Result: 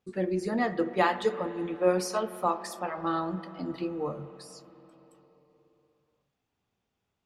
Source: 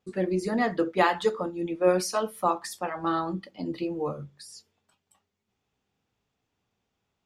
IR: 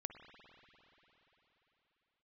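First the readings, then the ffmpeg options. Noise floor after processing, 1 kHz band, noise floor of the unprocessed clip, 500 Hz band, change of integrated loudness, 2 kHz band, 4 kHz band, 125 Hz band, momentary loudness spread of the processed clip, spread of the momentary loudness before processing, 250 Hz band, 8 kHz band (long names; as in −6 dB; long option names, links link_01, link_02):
−82 dBFS, −2.0 dB, −81 dBFS, −2.0 dB, −2.0 dB, −2.5 dB, −3.5 dB, −2.0 dB, 11 LU, 12 LU, −2.0 dB, −4.0 dB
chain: -filter_complex "[0:a]asplit=2[link_01][link_02];[1:a]atrim=start_sample=2205,highshelf=frequency=4500:gain=-6.5[link_03];[link_02][link_03]afir=irnorm=-1:irlink=0,volume=3dB[link_04];[link_01][link_04]amix=inputs=2:normalize=0,volume=-7.5dB"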